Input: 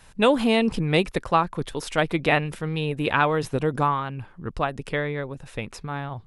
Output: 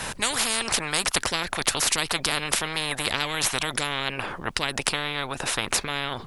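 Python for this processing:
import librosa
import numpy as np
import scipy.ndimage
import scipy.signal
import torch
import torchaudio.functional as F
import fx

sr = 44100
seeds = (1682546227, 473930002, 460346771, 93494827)

y = fx.spectral_comp(x, sr, ratio=10.0)
y = y * librosa.db_to_amplitude(4.0)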